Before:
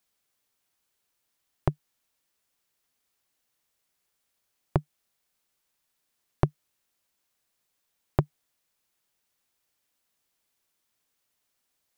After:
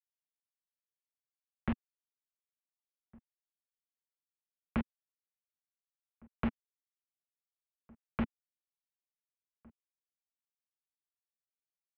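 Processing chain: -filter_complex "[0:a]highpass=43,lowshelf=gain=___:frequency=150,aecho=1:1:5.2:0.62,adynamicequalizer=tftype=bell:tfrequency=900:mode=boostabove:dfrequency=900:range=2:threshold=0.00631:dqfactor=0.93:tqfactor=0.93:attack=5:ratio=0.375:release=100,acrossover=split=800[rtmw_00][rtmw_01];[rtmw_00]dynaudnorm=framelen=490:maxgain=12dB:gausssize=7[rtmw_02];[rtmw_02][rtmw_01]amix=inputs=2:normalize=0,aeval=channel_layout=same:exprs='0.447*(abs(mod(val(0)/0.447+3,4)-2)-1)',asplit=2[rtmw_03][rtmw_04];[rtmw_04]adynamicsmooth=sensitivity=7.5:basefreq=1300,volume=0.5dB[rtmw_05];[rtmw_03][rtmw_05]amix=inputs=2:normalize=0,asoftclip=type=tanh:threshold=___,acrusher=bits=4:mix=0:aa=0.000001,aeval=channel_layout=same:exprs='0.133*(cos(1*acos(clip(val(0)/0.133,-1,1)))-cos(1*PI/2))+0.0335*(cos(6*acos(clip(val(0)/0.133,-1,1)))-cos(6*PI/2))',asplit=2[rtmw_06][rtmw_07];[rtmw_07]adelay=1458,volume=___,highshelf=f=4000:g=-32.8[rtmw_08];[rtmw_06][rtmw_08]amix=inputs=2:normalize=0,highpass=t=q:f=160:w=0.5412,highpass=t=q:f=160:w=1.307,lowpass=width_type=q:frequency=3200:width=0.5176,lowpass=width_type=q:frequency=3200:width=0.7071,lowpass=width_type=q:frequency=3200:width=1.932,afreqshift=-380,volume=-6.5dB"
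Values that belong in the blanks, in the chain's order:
4.5, -16.5dB, -25dB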